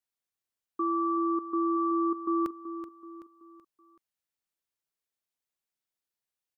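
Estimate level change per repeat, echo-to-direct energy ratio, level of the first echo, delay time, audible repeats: −7.0 dB, −10.5 dB, −11.5 dB, 379 ms, 4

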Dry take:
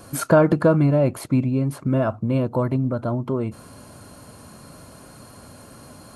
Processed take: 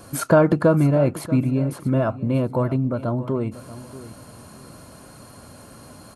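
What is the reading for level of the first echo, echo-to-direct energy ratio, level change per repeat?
−16.0 dB, −16.0 dB, −12.0 dB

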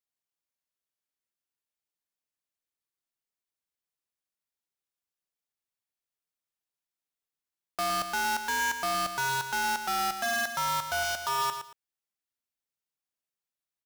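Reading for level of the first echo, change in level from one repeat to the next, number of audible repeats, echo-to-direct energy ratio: −8.5 dB, −13.0 dB, 2, −8.5 dB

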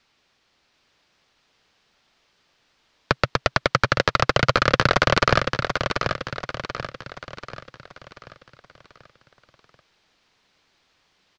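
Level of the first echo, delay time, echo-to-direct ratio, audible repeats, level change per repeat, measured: −6.0 dB, 736 ms, −5.0 dB, 5, −6.5 dB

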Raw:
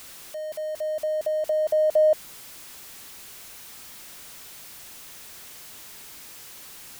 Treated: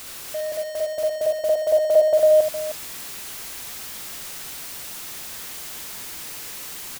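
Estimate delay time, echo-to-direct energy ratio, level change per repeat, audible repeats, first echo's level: 62 ms, 0.0 dB, repeats not evenly spaced, 5, −4.0 dB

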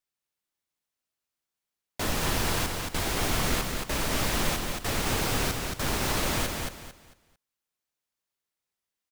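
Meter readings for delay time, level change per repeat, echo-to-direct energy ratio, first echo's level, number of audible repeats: 224 ms, −11.0 dB, −3.5 dB, −4.0 dB, 3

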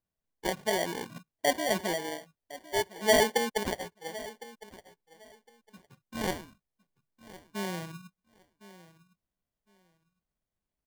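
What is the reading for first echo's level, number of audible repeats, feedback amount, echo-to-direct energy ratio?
−18.0 dB, 2, 19%, −18.0 dB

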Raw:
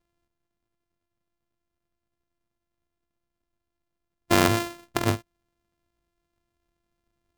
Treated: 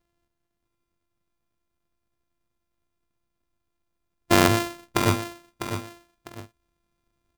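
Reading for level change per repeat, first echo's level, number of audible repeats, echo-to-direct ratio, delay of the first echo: −10.0 dB, −9.0 dB, 2, −8.5 dB, 651 ms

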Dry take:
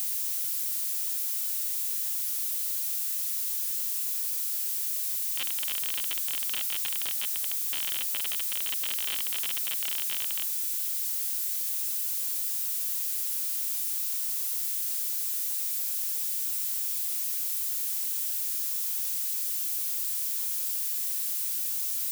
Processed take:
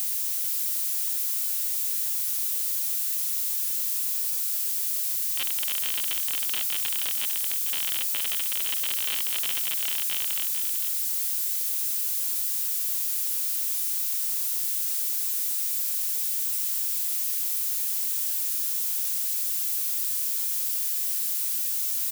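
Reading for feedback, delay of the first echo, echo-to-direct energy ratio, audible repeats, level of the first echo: repeats not evenly spaced, 449 ms, −8.5 dB, 1, −8.5 dB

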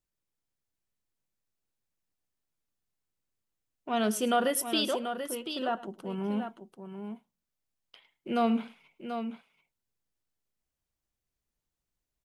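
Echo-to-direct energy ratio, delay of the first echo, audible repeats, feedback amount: −8.0 dB, 106 ms, 2, repeats not evenly spaced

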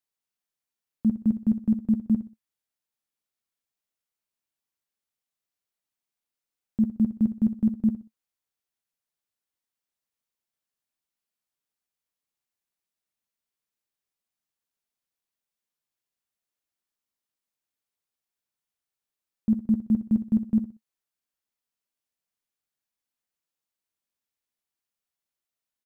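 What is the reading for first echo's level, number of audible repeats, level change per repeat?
−11.5 dB, 3, −10.5 dB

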